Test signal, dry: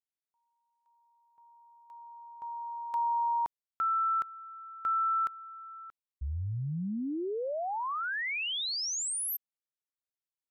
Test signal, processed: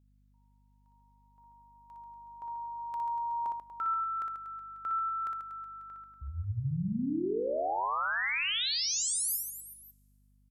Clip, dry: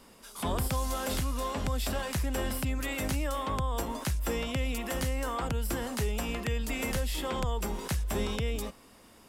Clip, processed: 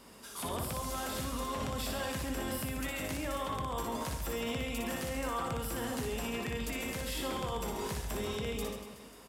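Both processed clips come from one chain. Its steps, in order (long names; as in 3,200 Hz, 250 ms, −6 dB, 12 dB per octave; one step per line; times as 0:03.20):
high-pass filter 89 Hz 12 dB per octave
brickwall limiter −30 dBFS
reverse bouncing-ball delay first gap 60 ms, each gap 1.3×, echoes 5
coupled-rooms reverb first 0.25 s, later 1.7 s, from −17 dB, DRR 17 dB
mains hum 50 Hz, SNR 30 dB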